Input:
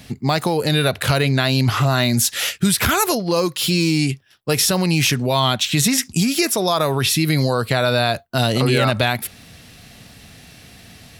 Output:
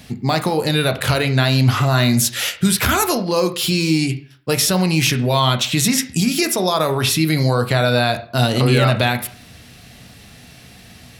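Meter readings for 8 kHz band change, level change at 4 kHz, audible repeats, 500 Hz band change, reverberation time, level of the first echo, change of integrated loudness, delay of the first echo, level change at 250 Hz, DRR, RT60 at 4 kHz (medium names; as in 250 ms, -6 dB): 0.0 dB, 0.0 dB, no echo, +1.0 dB, 0.45 s, no echo, +1.0 dB, no echo, +1.0 dB, 7.5 dB, 0.40 s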